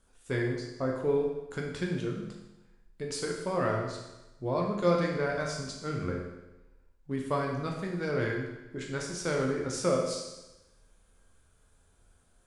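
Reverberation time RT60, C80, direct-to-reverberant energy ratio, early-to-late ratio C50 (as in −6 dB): 1.0 s, 6.0 dB, −1.0 dB, 3.0 dB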